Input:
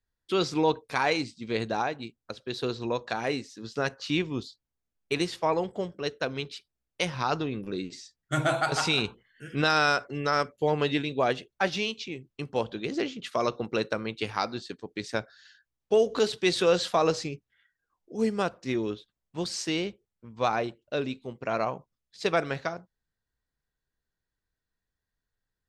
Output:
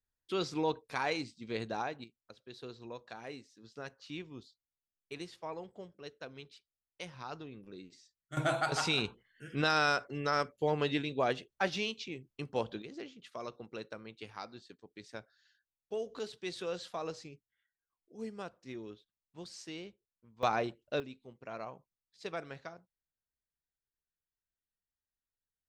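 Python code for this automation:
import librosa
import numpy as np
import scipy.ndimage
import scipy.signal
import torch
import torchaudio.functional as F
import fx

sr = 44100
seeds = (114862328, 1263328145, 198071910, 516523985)

y = fx.gain(x, sr, db=fx.steps((0.0, -8.0), (2.04, -16.0), (8.37, -5.5), (12.82, -15.5), (20.43, -4.0), (21.0, -14.5)))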